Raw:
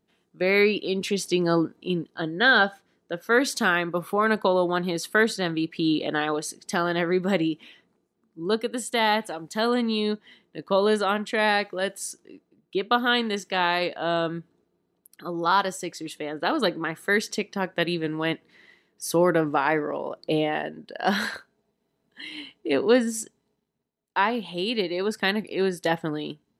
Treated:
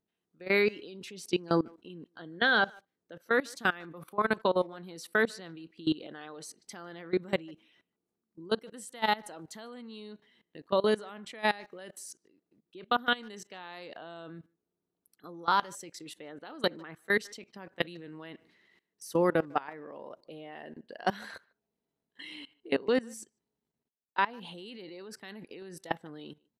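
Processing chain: level held to a coarse grid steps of 21 dB; speakerphone echo 150 ms, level -26 dB; trim -3 dB

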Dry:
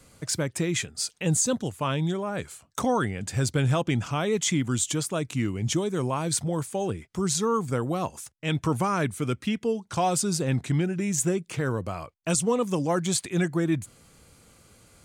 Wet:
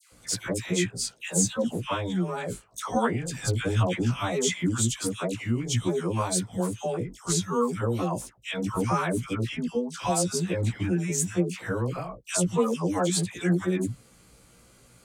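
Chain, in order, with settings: short-time spectra conjugated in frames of 34 ms; phase dispersion lows, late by 120 ms, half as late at 1.2 kHz; trim +2.5 dB

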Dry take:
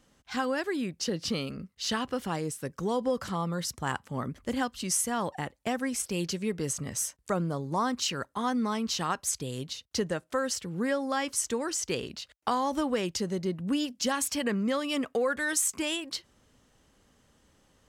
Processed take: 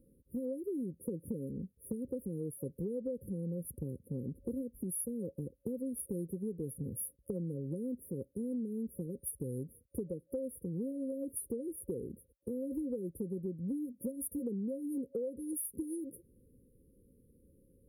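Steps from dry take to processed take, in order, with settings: FFT band-reject 550–9500 Hz; compression 5:1, threshold -37 dBFS, peak gain reduction 12.5 dB; trim +1.5 dB

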